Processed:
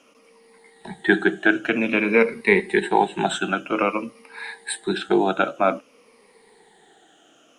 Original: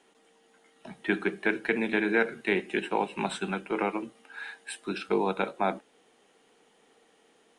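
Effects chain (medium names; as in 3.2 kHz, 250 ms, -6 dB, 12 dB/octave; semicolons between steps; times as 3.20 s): drifting ripple filter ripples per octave 0.9, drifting -0.52 Hz, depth 14 dB; trim +6 dB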